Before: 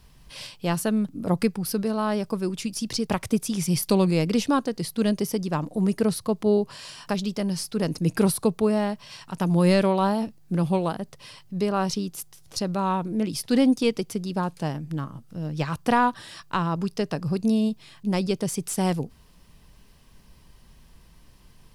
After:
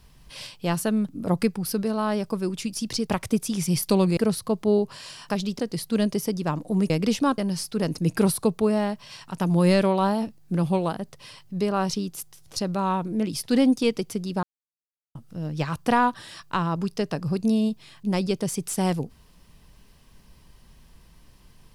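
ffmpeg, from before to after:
-filter_complex "[0:a]asplit=7[s0][s1][s2][s3][s4][s5][s6];[s0]atrim=end=4.172[s7];[s1]atrim=start=5.958:end=7.382[s8];[s2]atrim=start=4.648:end=5.962[s9];[s3]atrim=start=4.168:end=4.652[s10];[s4]atrim=start=7.378:end=14.43,asetpts=PTS-STARTPTS,afade=t=out:st=7.048:d=0.004:c=hsin[s11];[s5]atrim=start=14.43:end=15.15,asetpts=PTS-STARTPTS,volume=0[s12];[s6]atrim=start=15.15,asetpts=PTS-STARTPTS,afade=t=in:d=0.004:c=hsin[s13];[s7][s8]acrossfade=d=0.004:c1=hsin:c2=hsin[s14];[s14][s9]acrossfade=d=0.004:c1=hsin:c2=hsin[s15];[s15][s10]acrossfade=d=0.004:c1=hsin:c2=hsin[s16];[s11][s12][s13]concat=n=3:v=0:a=1[s17];[s16][s17]acrossfade=d=0.004:c1=hsin:c2=hsin"

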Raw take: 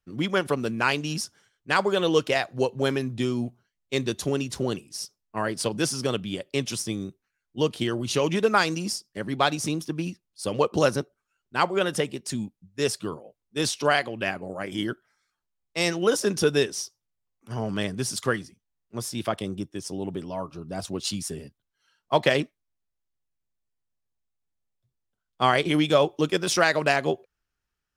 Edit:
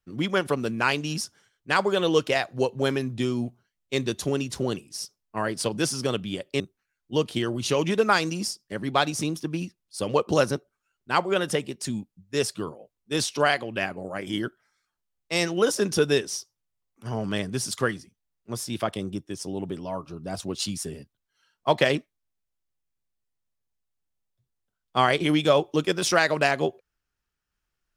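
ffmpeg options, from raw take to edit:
-filter_complex "[0:a]asplit=2[s0][s1];[s0]atrim=end=6.602[s2];[s1]atrim=start=7.048[s3];[s2][s3]acrossfade=d=0.004:c1=hsin:c2=hsin"

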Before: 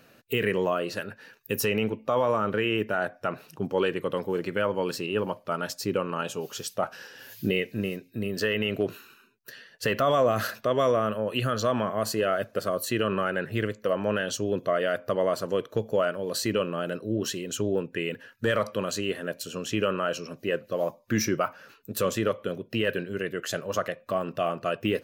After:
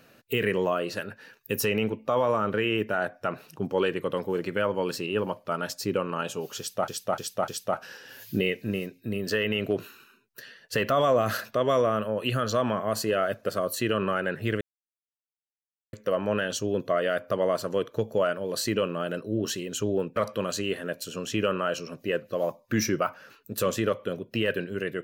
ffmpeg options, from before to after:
-filter_complex "[0:a]asplit=6[s0][s1][s2][s3][s4][s5];[s0]atrim=end=6.882[s6];[s1]atrim=start=6.578:end=6.882[s7];[s2]atrim=start=6.578:end=6.882[s8];[s3]atrim=start=6.578:end=13.71,asetpts=PTS-STARTPTS,afade=t=out:st=7.128:d=0.004:c=hsin,apad=pad_dur=1.32[s9];[s4]atrim=start=13.71:end=17.942,asetpts=PTS-STARTPTS,afade=t=in:d=0.004:c=hsin[s10];[s5]atrim=start=18.548[s11];[s6][s7]acrossfade=d=0.004:c1=hsin:c2=hsin[s12];[s12][s8]acrossfade=d=0.004:c1=hsin:c2=hsin[s13];[s9][s10]concat=n=2:v=0:a=1[s14];[s13][s14]acrossfade=d=0.004:c1=hsin:c2=hsin[s15];[s15][s11]acrossfade=d=0.004:c1=hsin:c2=hsin"

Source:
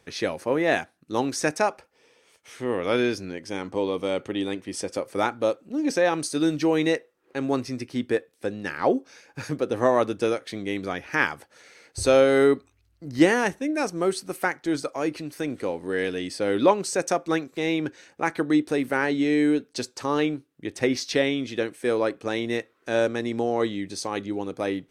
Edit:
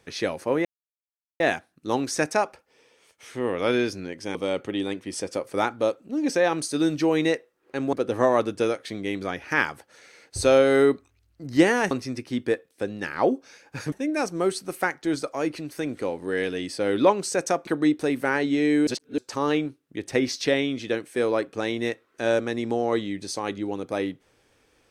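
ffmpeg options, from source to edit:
-filter_complex "[0:a]asplit=9[s0][s1][s2][s3][s4][s5][s6][s7][s8];[s0]atrim=end=0.65,asetpts=PTS-STARTPTS,afade=t=out:st=0.646:d=0.004:c=hsin,apad=pad_dur=0.75[s9];[s1]atrim=start=0.65:end=3.602,asetpts=PTS-STARTPTS,afade=t=in:d=0.004:c=hsin[s10];[s2]atrim=start=3.958:end=7.542[s11];[s3]atrim=start=9.548:end=13.532[s12];[s4]atrim=start=7.538:end=9.552[s13];[s5]atrim=start=13.528:end=17.282[s14];[s6]atrim=start=18.348:end=19.552[s15];[s7]atrim=start=19.548:end=19.862,asetpts=PTS-STARTPTS,areverse[s16];[s8]atrim=start=19.858[s17];[s9][s10]concat=n=2:v=0:a=1[s18];[s18][s11]acrossfade=d=0.004:c1=hsin:c2=hsin[s19];[s19][s12]acrossfade=d=0.004:c1=hsin:c2=hsin[s20];[s20][s13]acrossfade=d=0.004:c1=hsin:c2=hsin[s21];[s21][s14]acrossfade=d=0.004:c1=hsin:c2=hsin[s22];[s22][s15]acrossfade=d=0.004:c1=hsin:c2=hsin[s23];[s23][s16]acrossfade=d=0.004:c1=hsin:c2=hsin[s24];[s24][s17]acrossfade=d=0.004:c1=hsin:c2=hsin"

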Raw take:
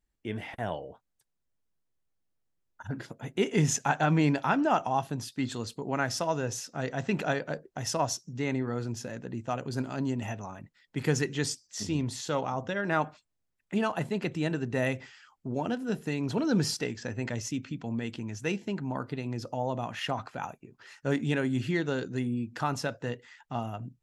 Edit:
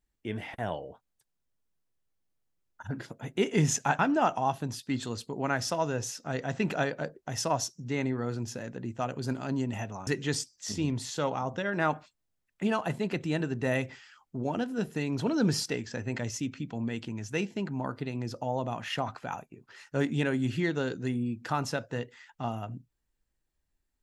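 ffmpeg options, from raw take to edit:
-filter_complex "[0:a]asplit=3[s0][s1][s2];[s0]atrim=end=3.992[s3];[s1]atrim=start=4.478:end=10.562[s4];[s2]atrim=start=11.178[s5];[s3][s4]acrossfade=d=0.004:c1=hsin:c2=hsin[s6];[s6][s5]acrossfade=d=0.004:c1=hsin:c2=hsin"

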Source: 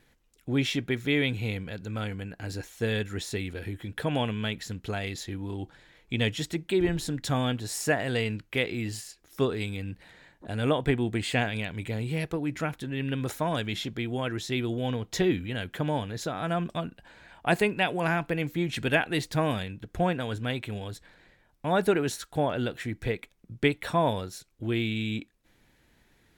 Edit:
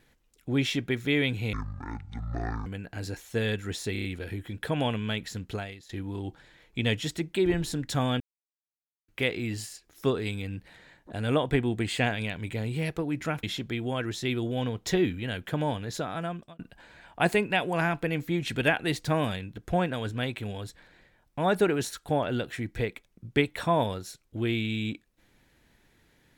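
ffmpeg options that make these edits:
-filter_complex "[0:a]asplit=12[s0][s1][s2][s3][s4][s5][s6][s7][s8][s9][s10][s11];[s0]atrim=end=1.534[s12];[s1]atrim=start=1.53:end=2.13,asetpts=PTS-STARTPTS,asetrate=23373,aresample=44100[s13];[s2]atrim=start=2.126:end=3.422[s14];[s3]atrim=start=3.388:end=3.422[s15];[s4]atrim=start=3.388:end=3.422[s16];[s5]atrim=start=3.388:end=3.422[s17];[s6]atrim=start=3.388:end=5.24,asetpts=PTS-STARTPTS,afade=t=out:st=1.502:d=0.35:c=qua:silence=0.141254[s18];[s7]atrim=start=5.24:end=7.55,asetpts=PTS-STARTPTS,afade=t=in:d=0.004:c=hsin:silence=0.141254,afade=t=out:st=2.306:d=0.004:c=hsin[s19];[s8]atrim=start=7.55:end=8.43,asetpts=PTS-STARTPTS,volume=0[s20];[s9]atrim=start=8.43:end=12.782,asetpts=PTS-STARTPTS,afade=t=in:d=0.004:c=hsin[s21];[s10]atrim=start=13.698:end=16.86,asetpts=PTS-STARTPTS,afade=t=out:st=2.602:d=0.56[s22];[s11]atrim=start=16.86,asetpts=PTS-STARTPTS,afade=t=in:d=0.004:c=hsin[s23];[s12][s13]acrossfade=d=0.004:c1=hsin:c2=hsin[s24];[s24][s14]acrossfade=d=0.004:c1=hsin:c2=hsin[s25];[s25][s15]acrossfade=d=0.004:c1=hsin:c2=hsin[s26];[s26][s16]acrossfade=d=0.004:c1=hsin:c2=hsin[s27];[s27][s17]acrossfade=d=0.004:c1=hsin:c2=hsin[s28];[s18][s19][s20][s21]concat=n=4:v=0:a=1[s29];[s28][s29]acrossfade=d=0.004:c1=hsin:c2=hsin[s30];[s22][s23]concat=n=2:v=0:a=1[s31];[s30][s31]acrossfade=d=0.004:c1=hsin:c2=hsin"

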